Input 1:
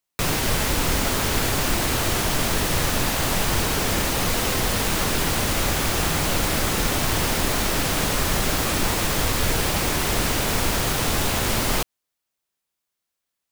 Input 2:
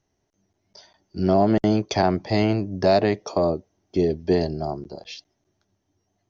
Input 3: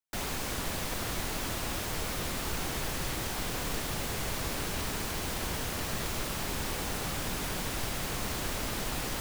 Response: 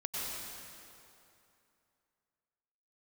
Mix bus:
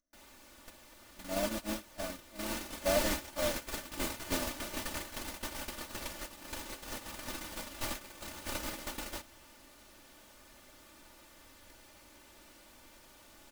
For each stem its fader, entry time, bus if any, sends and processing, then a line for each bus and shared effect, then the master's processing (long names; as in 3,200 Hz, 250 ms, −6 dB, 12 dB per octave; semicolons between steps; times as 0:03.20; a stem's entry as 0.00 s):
−14.5 dB, 2.20 s, no send, echo send −6 dB, pitch vibrato 0.87 Hz 8.1 cents
−13.5 dB, 0.00 s, send −20 dB, no echo send, low-shelf EQ 98 Hz +8 dB; upward compression, threshold −33 dBFS; phaser with its sweep stopped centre 570 Hz, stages 8
−1.5 dB, 0.00 s, send −18.5 dB, no echo send, no processing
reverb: on, RT60 2.7 s, pre-delay 88 ms
echo: repeating echo 92 ms, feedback 45%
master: noise gate −29 dBFS, range −22 dB; low-shelf EQ 160 Hz −7.5 dB; comb filter 3.4 ms, depth 63%